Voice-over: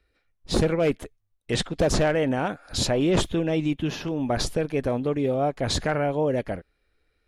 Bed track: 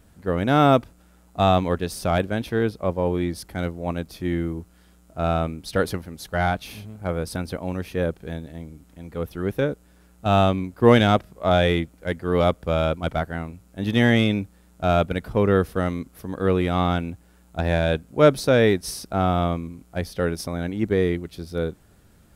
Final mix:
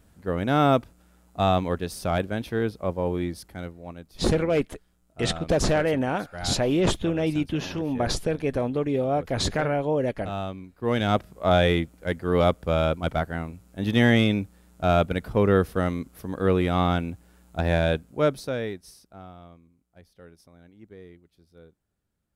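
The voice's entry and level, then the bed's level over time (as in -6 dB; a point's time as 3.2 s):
3.70 s, -0.5 dB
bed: 3.25 s -3.5 dB
3.97 s -13.5 dB
10.81 s -13.5 dB
11.23 s -1 dB
17.87 s -1 dB
19.38 s -25 dB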